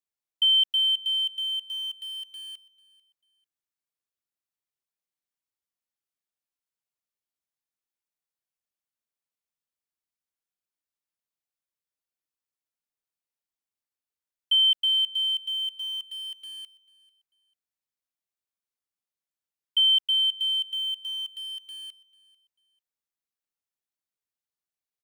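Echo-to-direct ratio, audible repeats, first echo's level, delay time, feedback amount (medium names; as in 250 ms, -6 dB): -21.5 dB, 2, -22.0 dB, 443 ms, 26%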